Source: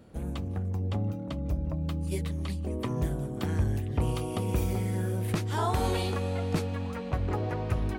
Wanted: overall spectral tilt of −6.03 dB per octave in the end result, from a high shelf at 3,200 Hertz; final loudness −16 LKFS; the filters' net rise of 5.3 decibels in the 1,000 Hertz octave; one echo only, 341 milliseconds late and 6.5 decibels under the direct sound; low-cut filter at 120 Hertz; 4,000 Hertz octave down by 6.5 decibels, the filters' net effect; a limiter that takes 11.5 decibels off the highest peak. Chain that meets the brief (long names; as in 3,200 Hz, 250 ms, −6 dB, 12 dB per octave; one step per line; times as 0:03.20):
high-pass filter 120 Hz
parametric band 1,000 Hz +7.5 dB
high-shelf EQ 3,200 Hz −5 dB
parametric band 4,000 Hz −5.5 dB
brickwall limiter −25.5 dBFS
single-tap delay 341 ms −6.5 dB
level +18.5 dB